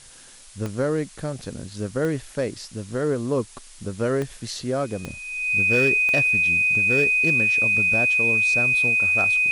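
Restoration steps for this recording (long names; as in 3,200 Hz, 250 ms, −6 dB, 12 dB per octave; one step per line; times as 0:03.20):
clipped peaks rebuilt −13 dBFS
click removal
notch filter 2,500 Hz, Q 30
noise reduction from a noise print 24 dB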